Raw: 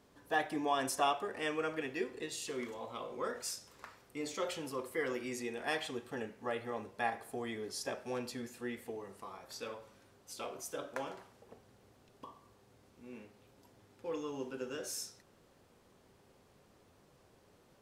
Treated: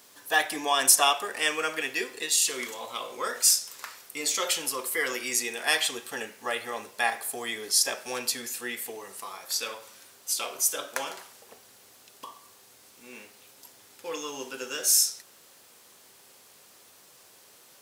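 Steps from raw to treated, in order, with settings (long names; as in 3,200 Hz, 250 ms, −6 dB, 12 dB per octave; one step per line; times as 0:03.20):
spectral tilt +4.5 dB per octave
level +8 dB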